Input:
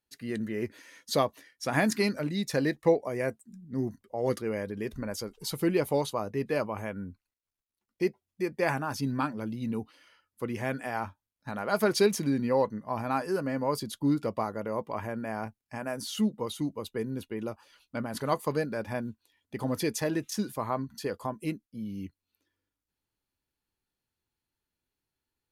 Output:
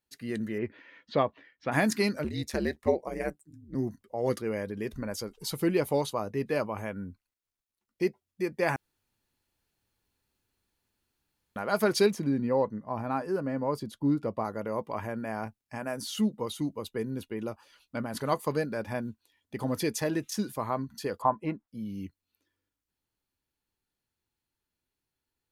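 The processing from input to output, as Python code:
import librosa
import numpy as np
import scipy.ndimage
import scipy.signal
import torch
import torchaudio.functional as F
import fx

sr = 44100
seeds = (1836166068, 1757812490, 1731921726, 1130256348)

y = fx.lowpass(x, sr, hz=3100.0, slope=24, at=(0.58, 1.72))
y = fx.ring_mod(y, sr, carrier_hz=73.0, at=(2.24, 3.75))
y = fx.high_shelf(y, sr, hz=2000.0, db=-10.5, at=(12.1, 14.45))
y = fx.curve_eq(y, sr, hz=(400.0, 910.0, 10000.0), db=(0, 13, -24), at=(21.22, 21.68))
y = fx.edit(y, sr, fx.room_tone_fill(start_s=8.76, length_s=2.8), tone=tone)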